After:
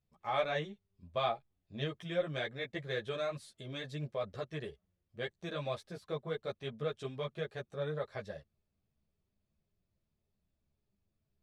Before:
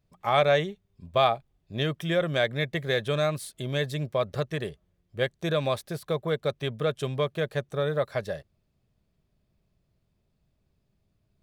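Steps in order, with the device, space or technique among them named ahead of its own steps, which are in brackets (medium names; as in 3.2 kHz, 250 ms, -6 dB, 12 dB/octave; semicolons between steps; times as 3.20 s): string-machine ensemble chorus (three-phase chorus; low-pass 7.1 kHz 12 dB/octave); trim -7.5 dB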